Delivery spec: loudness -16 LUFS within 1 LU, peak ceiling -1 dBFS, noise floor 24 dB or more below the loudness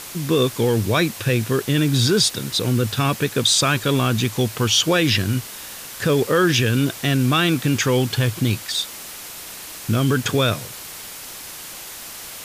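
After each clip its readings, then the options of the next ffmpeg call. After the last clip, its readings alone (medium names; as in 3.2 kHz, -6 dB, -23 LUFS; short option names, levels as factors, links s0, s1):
noise floor -36 dBFS; noise floor target -44 dBFS; loudness -19.5 LUFS; peak level -6.0 dBFS; loudness target -16.0 LUFS
-> -af "afftdn=nr=8:nf=-36"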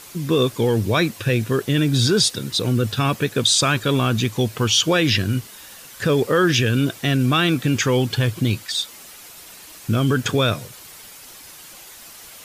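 noise floor -42 dBFS; noise floor target -44 dBFS
-> -af "afftdn=nr=6:nf=-42"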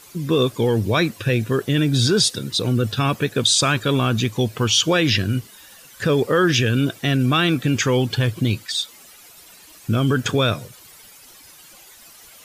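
noise floor -46 dBFS; loudness -19.5 LUFS; peak level -6.0 dBFS; loudness target -16.0 LUFS
-> -af "volume=1.5"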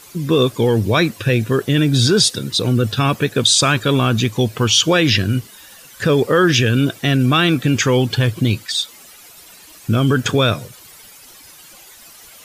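loudness -16.0 LUFS; peak level -2.5 dBFS; noise floor -43 dBFS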